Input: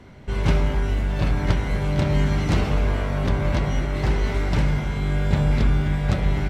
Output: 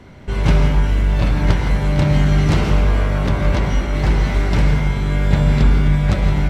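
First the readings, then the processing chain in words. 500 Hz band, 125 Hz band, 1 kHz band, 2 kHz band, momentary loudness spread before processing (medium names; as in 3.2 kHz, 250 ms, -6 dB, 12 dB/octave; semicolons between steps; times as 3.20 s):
+3.5 dB, +5.5 dB, +4.5 dB, +4.5 dB, 3 LU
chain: gated-style reverb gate 190 ms rising, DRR 6.5 dB; trim +4 dB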